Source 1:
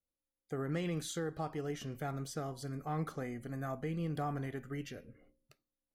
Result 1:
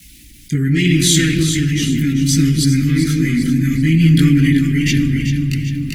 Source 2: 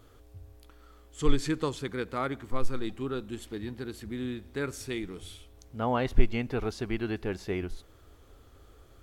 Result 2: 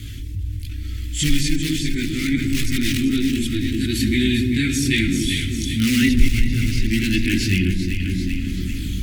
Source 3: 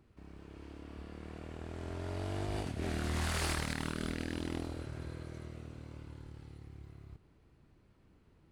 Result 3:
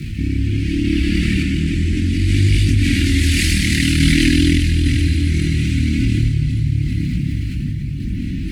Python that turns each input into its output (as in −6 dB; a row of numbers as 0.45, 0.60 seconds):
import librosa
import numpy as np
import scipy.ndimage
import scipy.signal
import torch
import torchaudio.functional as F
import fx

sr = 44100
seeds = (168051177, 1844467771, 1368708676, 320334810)

p1 = fx.bass_treble(x, sr, bass_db=0, treble_db=-3)
p2 = fx.room_shoebox(p1, sr, seeds[0], volume_m3=3700.0, walls='mixed', distance_m=0.68)
p3 = (np.mod(10.0 ** (22.5 / 20.0) * p2 + 1.0, 2.0) - 1.0) / 10.0 ** (22.5 / 20.0)
p4 = p2 + F.gain(torch.from_numpy(p3), -10.5).numpy()
p5 = fx.highpass(p4, sr, hz=70.0, slope=6)
p6 = fx.rotary(p5, sr, hz=0.65)
p7 = fx.chorus_voices(p6, sr, voices=4, hz=0.44, base_ms=20, depth_ms=2.1, mix_pct=60)
p8 = fx.rider(p7, sr, range_db=4, speed_s=2.0)
p9 = fx.echo_alternate(p8, sr, ms=195, hz=850.0, feedback_pct=61, wet_db=-3.5)
p10 = fx.tremolo_random(p9, sr, seeds[1], hz=3.5, depth_pct=55)
p11 = fx.dynamic_eq(p10, sr, hz=170.0, q=1.1, threshold_db=-51.0, ratio=4.0, max_db=-6)
p12 = scipy.signal.sosfilt(scipy.signal.ellip(3, 1.0, 60, [260.0, 2100.0], 'bandstop', fs=sr, output='sos'), p11)
p13 = fx.env_flatten(p12, sr, amount_pct=50)
y = p13 * 10.0 ** (-1.5 / 20.0) / np.max(np.abs(p13))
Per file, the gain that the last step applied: +31.0, +14.0, +29.5 decibels